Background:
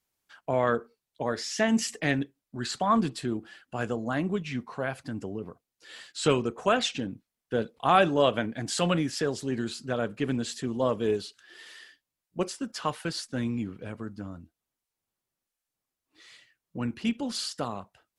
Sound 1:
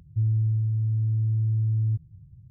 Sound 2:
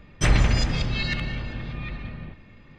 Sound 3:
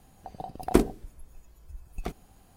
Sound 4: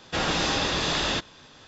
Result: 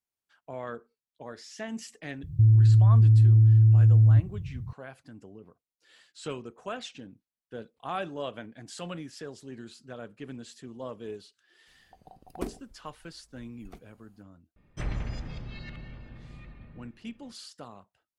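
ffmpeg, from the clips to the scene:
-filter_complex "[0:a]volume=-12.5dB[a];[1:a]alimiter=level_in=24dB:limit=-1dB:release=50:level=0:latency=1[b];[2:a]highshelf=f=2.1k:g=-9[c];[b]atrim=end=2.5,asetpts=PTS-STARTPTS,volume=-12.5dB,afade=t=in:d=0.004:c=hsin,afade=t=out:st=2.496:d=0.004:c=hsin,adelay=2230[d];[3:a]atrim=end=2.56,asetpts=PTS-STARTPTS,volume=-13.5dB,afade=t=in:d=0.004:c=hsin,afade=t=out:st=2.556:d=0.004:c=hsin,adelay=11670[e];[c]atrim=end=2.78,asetpts=PTS-STARTPTS,volume=-13.5dB,afade=t=in:d=0.004:c=hsin,afade=t=out:st=2.776:d=0.004:c=hsin,adelay=14560[f];[a][d][e][f]amix=inputs=4:normalize=0"

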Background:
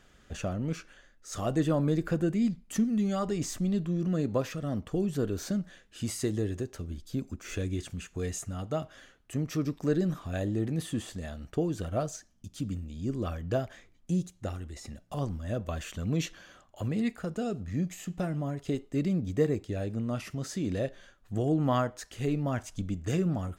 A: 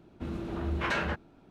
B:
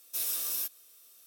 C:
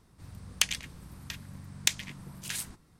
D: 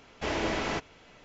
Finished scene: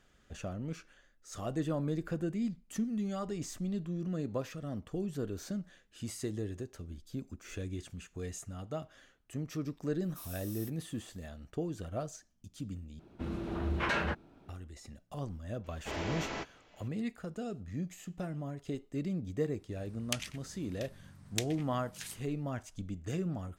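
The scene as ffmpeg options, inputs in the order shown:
-filter_complex "[0:a]volume=-7dB[a];[4:a]asplit=2[b][c];[c]adelay=15,volume=-12dB[d];[b][d]amix=inputs=2:normalize=0[e];[a]asplit=2[f][g];[f]atrim=end=12.994[h];[1:a]atrim=end=1.5,asetpts=PTS-STARTPTS,volume=-1.5dB[i];[g]atrim=start=14.486[j];[2:a]atrim=end=1.26,asetpts=PTS-STARTPTS,volume=-16dB,afade=t=in:d=0.004:c=hsin,afade=t=out:st=1.256:d=0.004:c=hsin,adelay=441882S[k];[e]atrim=end=1.24,asetpts=PTS-STARTPTS,volume=-8dB,afade=t=in:d=0.004:c=hsin,afade=t=out:st=1.236:d=0.004:c=hsin,adelay=15640[l];[3:a]atrim=end=2.99,asetpts=PTS-STARTPTS,volume=-9.5dB,afade=t=in:d=0.004:c=hsin,afade=t=out:st=2.986:d=0.004:c=hsin,adelay=19510[m];[h][i]acrossfade=d=0.004:c1=hsin:c2=hsin[n];[n][j]acrossfade=d=0.004:c1=hsin:c2=hsin[o];[o][k][l][m]amix=inputs=4:normalize=0"

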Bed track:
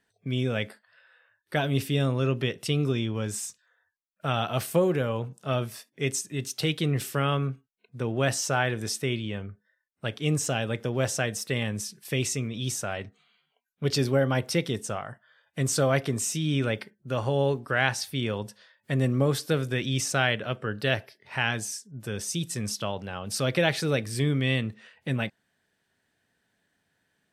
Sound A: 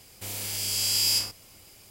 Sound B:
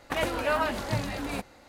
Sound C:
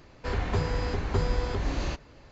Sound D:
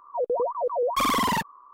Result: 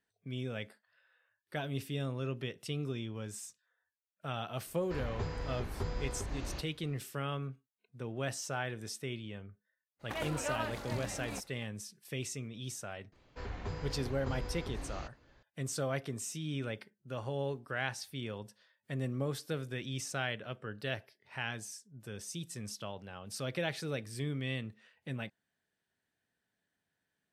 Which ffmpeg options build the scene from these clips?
-filter_complex "[3:a]asplit=2[a][b];[0:a]volume=-11.5dB[c];[a]atrim=end=2.31,asetpts=PTS-STARTPTS,volume=-10.5dB,afade=t=in:d=0.004:c=hsin,afade=t=out:st=2.306:d=0.004:c=hsin,adelay=4660[d];[2:a]atrim=end=1.68,asetpts=PTS-STARTPTS,volume=-10dB,afade=t=in:d=0.02,afade=t=out:st=1.66:d=0.02,adelay=9990[e];[b]atrim=end=2.31,asetpts=PTS-STARTPTS,volume=-12.5dB,afade=t=in:d=0.004:c=hsin,afade=t=out:st=2.306:d=0.004:c=hsin,adelay=13120[f];[c][d][e][f]amix=inputs=4:normalize=0"

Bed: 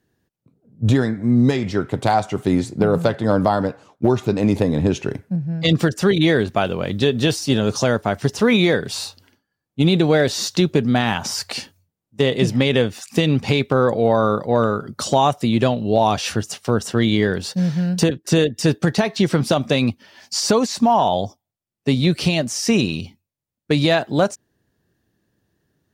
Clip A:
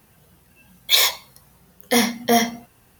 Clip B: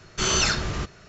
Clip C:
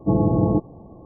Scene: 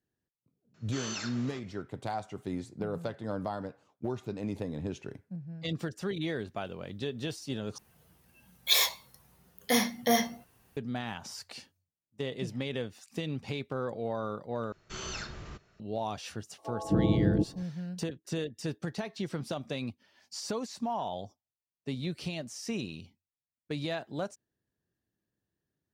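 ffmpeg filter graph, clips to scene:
-filter_complex "[2:a]asplit=2[a][b];[0:a]volume=-18dB[c];[a]highpass=300[d];[b]highshelf=f=4.6k:g=-5[e];[3:a]acrossover=split=630[f][g];[f]adelay=260[h];[h][g]amix=inputs=2:normalize=0[i];[c]asplit=3[j][k][l];[j]atrim=end=7.784[m];[1:a]atrim=end=2.99,asetpts=PTS-STARTPTS,volume=-8.5dB[n];[k]atrim=start=10.766:end=14.724[o];[e]atrim=end=1.08,asetpts=PTS-STARTPTS,volume=-15.5dB[p];[l]atrim=start=15.796[q];[d]atrim=end=1.08,asetpts=PTS-STARTPTS,volume=-16dB,afade=t=in:d=0.004:c=hsin,afade=t=out:st=1.076:d=0.004:c=hsin,adelay=740[r];[i]atrim=end=1.05,asetpts=PTS-STARTPTS,volume=-6.5dB,afade=t=in:d=0.004:c=hsin,afade=t=out:st=1.046:d=0.004:c=hsin,adelay=16580[s];[m][n]acrossfade=d=0.004:c1=hsin:c2=hsin[t];[t][o]acrossfade=d=0.004:c1=hsin:c2=hsin[u];[u][p]acrossfade=d=0.004:c1=hsin:c2=hsin[v];[v][q]acrossfade=d=0.004:c1=hsin:c2=hsin[w];[w][r][s]amix=inputs=3:normalize=0"

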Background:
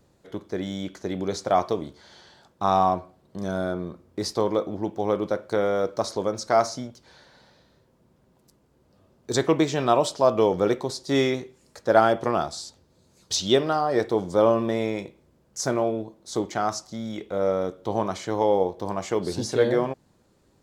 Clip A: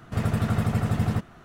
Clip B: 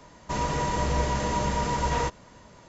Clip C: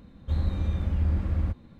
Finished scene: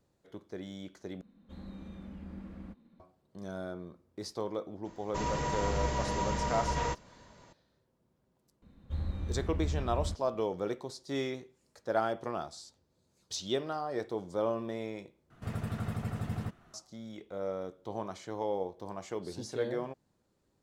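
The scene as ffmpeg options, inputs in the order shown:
-filter_complex "[3:a]asplit=2[a][b];[0:a]volume=-12.5dB[c];[a]lowshelf=f=150:t=q:w=3:g=-9.5[d];[c]asplit=3[e][f][g];[e]atrim=end=1.214[h];[d]atrim=end=1.79,asetpts=PTS-STARTPTS,volume=-13.5dB[i];[f]atrim=start=2.996:end=15.304[j];[1:a]atrim=end=1.44,asetpts=PTS-STARTPTS,volume=-11.5dB[k];[g]atrim=start=16.736[l];[2:a]atrim=end=2.68,asetpts=PTS-STARTPTS,volume=-6dB,afade=t=in:d=0.004:c=hsin,afade=t=out:st=2.676:d=0.004:c=hsin,adelay=213885S[m];[b]atrim=end=1.79,asetpts=PTS-STARTPTS,volume=-8.5dB,afade=t=in:d=0.004:c=hsin,afade=t=out:st=1.786:d=0.004:c=hsin,adelay=8620[n];[h][i]acrossfade=d=0.004:c1=hsin:c2=hsin[o];[o][j]acrossfade=d=0.004:c1=hsin:c2=hsin[p];[p][k]acrossfade=d=0.004:c1=hsin:c2=hsin[q];[q][l]acrossfade=d=0.004:c1=hsin:c2=hsin[r];[r][m][n]amix=inputs=3:normalize=0"

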